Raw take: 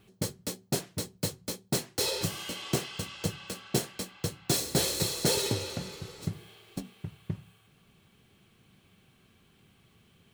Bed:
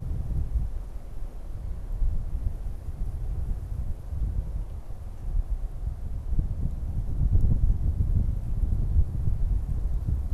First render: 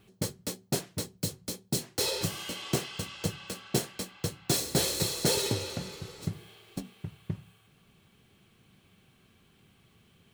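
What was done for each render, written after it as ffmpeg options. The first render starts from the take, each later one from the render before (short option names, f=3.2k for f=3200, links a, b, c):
-filter_complex "[0:a]asettb=1/sr,asplit=3[a][b][c];[a]atrim=end=1.044[d];[b]atrim=start=1.04:end=1.98,asetpts=PTS-STARTPTS,afade=t=in:d=0.004:c=qsin,afade=t=out:st=0.936:d=0.004:c=qsin,acrossover=split=440|3000[e][f][g];[f]acompressor=threshold=-44dB:ratio=6:attack=3.2:release=140:knee=2.83:detection=peak[h];[e][h][g]amix=inputs=3:normalize=0[i];[c]atrim=start=1.976[j];[d][i]acrossfade=d=0.004:c1=hsin:c2=qsin[k];[k][j]acrossfade=d=0.004:c1=qsin:c2=hsin"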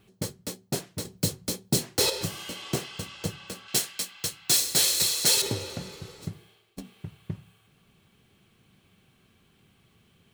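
-filter_complex "[0:a]asettb=1/sr,asplit=3[a][b][c];[a]atrim=end=1.054[d];[b]atrim=start=1.05:end=2.1,asetpts=PTS-STARTPTS,afade=t=in:d=0.004:c=qsin,afade=t=out:st=1.046:d=0.004:c=qsin,acontrast=49[e];[c]atrim=start=2.096[f];[d][e]acrossfade=d=0.004:c1=hsin:c2=qsin[g];[g][f]acrossfade=d=0.004:c1=qsin:c2=hsin,asettb=1/sr,asplit=3[h][i][j];[h]atrim=end=3.684[k];[i]atrim=start=3.68:end=5.42,asetpts=PTS-STARTPTS,afade=t=in:d=0.004:c=qsin,afade=t=out:st=1.736:d=0.004:c=qsin,tiltshelf=f=1.1k:g=-8.5[l];[j]atrim=start=5.416[m];[k][l]acrossfade=d=0.004:c1=hsin:c2=qsin[n];[n][m]acrossfade=d=0.004:c1=qsin:c2=hsin,asplit=2[o][p];[o]atrim=end=6.78,asetpts=PTS-STARTPTS,afade=t=out:st=6.12:d=0.66:silence=0.141254[q];[p]atrim=start=6.78,asetpts=PTS-STARTPTS,afade=t=in:d=0.004:c=hsin:silence=0.141254[r];[q][r]concat=n=2:v=0:a=1"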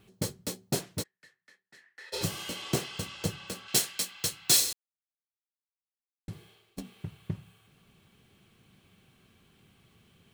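-filter_complex "[0:a]asplit=3[a][b][c];[a]afade=t=out:st=1.02:d=0.02[d];[b]bandpass=f=1.8k:t=q:w=18,afade=t=in:st=1.02:d=0.02,afade=t=out:st=2.12:d=0.02[e];[c]afade=t=in:st=2.12:d=0.02[f];[d][e][f]amix=inputs=3:normalize=0,asplit=3[g][h][i];[g]atrim=end=4.73,asetpts=PTS-STARTPTS,afade=t=out:st=4.726:d=0.004:c=hsin[j];[h]atrim=start=4.73:end=6.28,asetpts=PTS-STARTPTS,volume=0[k];[i]atrim=start=6.28,asetpts=PTS-STARTPTS,afade=t=in:d=0.004:c=hsin[l];[j][k][l]concat=n=3:v=0:a=1"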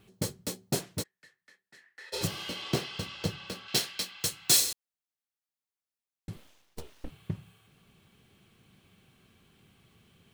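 -filter_complex "[0:a]asettb=1/sr,asplit=3[a][b][c];[a]atrim=end=2.274[d];[b]atrim=start=2.27:end=4.21,asetpts=PTS-STARTPTS,afade=t=in:d=0.004:c=qsin,afade=t=out:st=1.936:d=0.004:c=qsin,highshelf=f=5.9k:t=q:w=1.5:g=-6[e];[c]atrim=start=4.206[f];[d][e]acrossfade=d=0.004:c1=hsin:c2=qsin[g];[g][f]acrossfade=d=0.004:c1=qsin:c2=hsin,asettb=1/sr,asplit=3[h][i][j];[h]atrim=end=6.364[k];[i]atrim=start=6.36:end=7.1,asetpts=PTS-STARTPTS,afade=t=in:d=0.004:c=qsin,afade=t=out:st=0.736:d=0.004:c=qsin,aeval=exprs='abs(val(0))':c=same[l];[j]atrim=start=7.096[m];[k][l]acrossfade=d=0.004:c1=hsin:c2=qsin[n];[n][m]acrossfade=d=0.004:c1=qsin:c2=hsin"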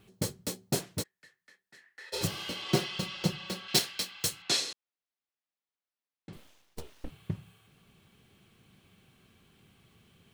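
-filter_complex "[0:a]asettb=1/sr,asplit=3[a][b][c];[a]atrim=end=2.684[d];[b]atrim=start=2.68:end=3.79,asetpts=PTS-STARTPTS,afade=t=in:d=0.004:c=qsin,afade=t=out:st=1.106:d=0.004:c=qsin,aecho=1:1:5.5:0.81,atrim=end_sample=48951[e];[c]atrim=start=3.786[f];[d][e]acrossfade=d=0.004:c1=hsin:c2=qsin[g];[g][f]acrossfade=d=0.004:c1=qsin:c2=hsin,asettb=1/sr,asplit=3[h][i][j];[h]atrim=end=4.424[k];[i]atrim=start=4.42:end=6.33,asetpts=PTS-STARTPTS,afade=t=in:d=0.004:c=qsin,afade=t=out:st=1.906:d=0.004:c=qsin,highpass=200,lowpass=4.4k[l];[j]atrim=start=6.326[m];[k][l]acrossfade=d=0.004:c1=hsin:c2=qsin[n];[n][m]acrossfade=d=0.004:c1=qsin:c2=hsin"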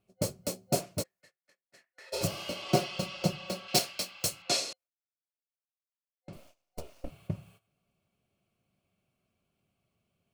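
-af "agate=range=-17dB:threshold=-57dB:ratio=16:detection=peak,superequalizer=8b=2.82:11b=0.501:13b=0.562"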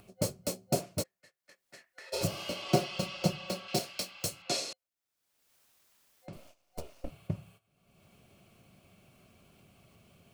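-filter_complex "[0:a]acrossover=split=630[a][b];[b]alimiter=limit=-21.5dB:level=0:latency=1:release=212[c];[a][c]amix=inputs=2:normalize=0,acompressor=mode=upward:threshold=-45dB:ratio=2.5"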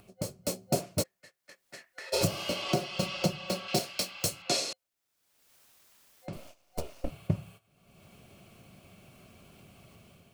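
-af "alimiter=limit=-20dB:level=0:latency=1:release=462,dynaudnorm=f=180:g=5:m=6dB"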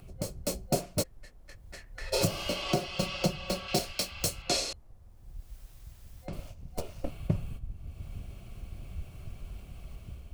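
-filter_complex "[1:a]volume=-17dB[a];[0:a][a]amix=inputs=2:normalize=0"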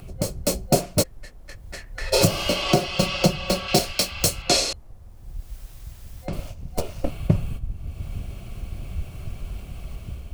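-af "volume=9.5dB"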